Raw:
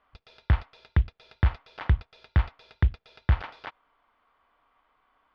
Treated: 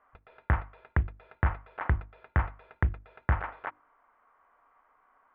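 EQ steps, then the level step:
low-pass filter 1,900 Hz 24 dB per octave
low-shelf EQ 300 Hz −9 dB
mains-hum notches 50/100/150/200/250/300/350 Hz
+4.5 dB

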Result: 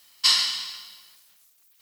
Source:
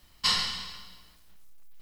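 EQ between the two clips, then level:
high-pass filter 810 Hz 6 dB per octave
high-shelf EQ 2,800 Hz +10 dB
0.0 dB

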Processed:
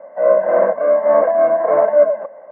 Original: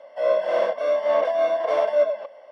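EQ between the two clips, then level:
Butterworth low-pass 1,800 Hz 36 dB per octave
parametric band 160 Hz +11.5 dB 1.5 octaves
+6.5 dB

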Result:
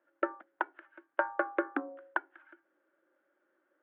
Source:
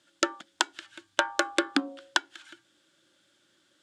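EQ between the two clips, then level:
four-pole ladder high-pass 320 Hz, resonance 25%
low-pass filter 1,900 Hz 24 dB per octave
high-frequency loss of the air 480 metres
+4.0 dB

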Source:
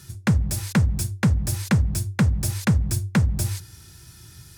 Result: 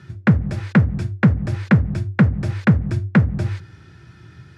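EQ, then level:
high-pass filter 110 Hz 12 dB per octave
Chebyshev low-pass filter 1,700 Hz, order 2
parametric band 930 Hz −5.5 dB 0.64 octaves
+8.0 dB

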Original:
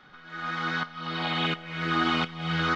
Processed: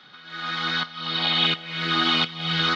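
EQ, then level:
high-pass filter 98 Hz 24 dB per octave
parametric band 3,900 Hz +13.5 dB 1.1 octaves
0.0 dB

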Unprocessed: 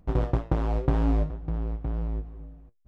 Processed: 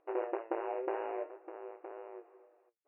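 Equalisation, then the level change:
dynamic equaliser 1,200 Hz, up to −6 dB, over −56 dBFS, Q 5.9
linear-phase brick-wall band-pass 320–2,900 Hz
high-frequency loss of the air 140 metres
−2.0 dB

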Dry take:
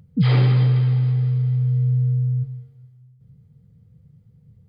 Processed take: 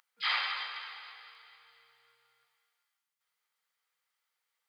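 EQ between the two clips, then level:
inverse Chebyshev high-pass filter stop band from 310 Hz, stop band 60 dB
+2.0 dB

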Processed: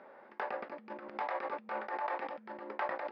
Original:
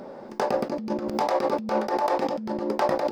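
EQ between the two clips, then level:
resonant band-pass 1,900 Hz, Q 1.5
high-frequency loss of the air 300 metres
−1.0 dB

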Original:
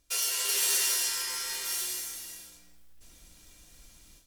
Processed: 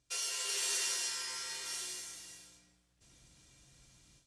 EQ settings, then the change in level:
high-pass filter 49 Hz
low-pass filter 9,200 Hz 24 dB per octave
parametric band 130 Hz +13.5 dB 0.35 octaves
−6.0 dB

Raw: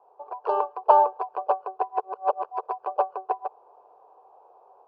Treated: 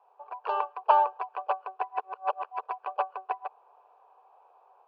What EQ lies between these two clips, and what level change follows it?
resonant band-pass 2,400 Hz, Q 1.8
+9.0 dB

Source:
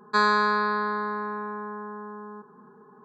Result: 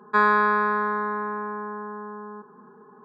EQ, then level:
Savitzky-Golay smoothing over 25 samples
high-pass filter 160 Hz
+2.5 dB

